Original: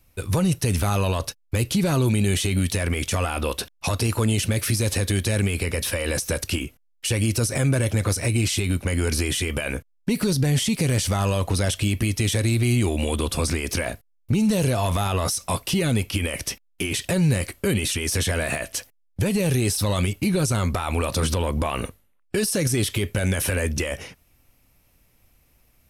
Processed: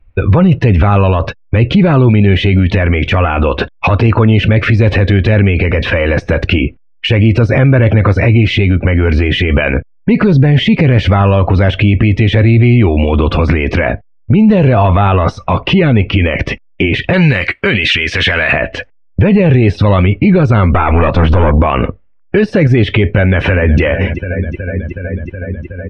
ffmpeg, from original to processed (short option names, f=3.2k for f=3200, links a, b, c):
-filter_complex "[0:a]asettb=1/sr,asplit=3[a][b][c];[a]atrim=end=17.134[d];[b]atrim=start=17.13:end=18.53,asetpts=PTS-STARTPTS,afade=t=in:d=0.004:c=qsin,afade=t=out:st=1.396:d=0.004:c=qsin,tiltshelf=f=970:g=-9[e];[c]atrim=start=18.526[f];[d][e]acrossfade=d=0.004:c1=hsin:c2=qsin[g];[g][f]acrossfade=d=0.004:c1=qsin:c2=hsin,asettb=1/sr,asplit=3[h][i][j];[h]atrim=end=20.714[k];[i]atrim=start=20.71:end=21.59,asetpts=PTS-STARTPTS,afade=t=in:d=0.004:c=qsin,afade=t=out:st=0.876:d=0.004:c=qsin,aeval=exprs='(tanh(15.8*val(0)+0.45)-tanh(0.45))/15.8':c=same[l];[j]atrim=start=21.586[m];[k][l]acrossfade=d=0.004:c1=hsin:c2=qsin[n];[n][m]acrossfade=d=0.004:c1=qsin:c2=hsin,asplit=2[o][p];[p]afade=t=in:st=23.19:d=0.01,afade=t=out:st=23.81:d=0.01,aecho=0:1:370|740|1110|1480|1850|2220|2590|2960|3330|3700|4070|4440:0.177828|0.151154|0.128481|0.109209|0.0928273|0.0789032|0.0670677|0.0570076|0.0484564|0.041188|0.0350098|0.0297583[q];[o][q]amix=inputs=2:normalize=0,afftdn=nr=20:nf=-42,lowpass=f=2.5k:w=0.5412,lowpass=f=2.5k:w=1.3066,alimiter=level_in=22.5dB:limit=-1dB:release=50:level=0:latency=1,volume=-1dB"